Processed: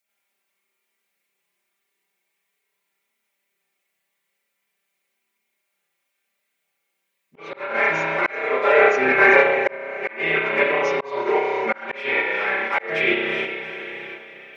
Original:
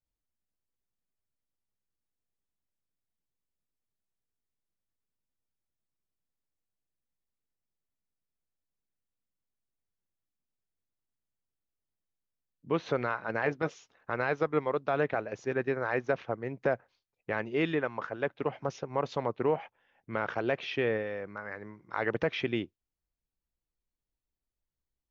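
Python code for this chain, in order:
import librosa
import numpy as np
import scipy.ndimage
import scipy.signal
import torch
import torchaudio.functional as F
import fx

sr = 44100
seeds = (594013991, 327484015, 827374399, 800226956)

p1 = fx.diode_clip(x, sr, knee_db=-26.5)
p2 = scipy.signal.sosfilt(scipy.signal.butter(2, 370.0, 'highpass', fs=sr, output='sos'), p1)
p3 = fx.peak_eq(p2, sr, hz=2200.0, db=11.5, octaves=0.41)
p4 = p3 + 0.86 * np.pad(p3, (int(5.1 * sr / 1000.0), 0))[:len(p3)]
p5 = fx.echo_diffused(p4, sr, ms=680, feedback_pct=52, wet_db=-13.0)
p6 = fx.rev_spring(p5, sr, rt60_s=1.9, pass_ms=(31,), chirp_ms=40, drr_db=-8.0)
p7 = fx.level_steps(p6, sr, step_db=11)
p8 = p6 + (p7 * librosa.db_to_amplitude(2.5))
p9 = fx.stretch_vocoder_free(p8, sr, factor=0.58)
p10 = fx.auto_swell(p9, sr, attack_ms=602.0)
p11 = fx.high_shelf(p10, sr, hz=4800.0, db=9.5)
y = p11 * librosa.db_to_amplitude(3.5)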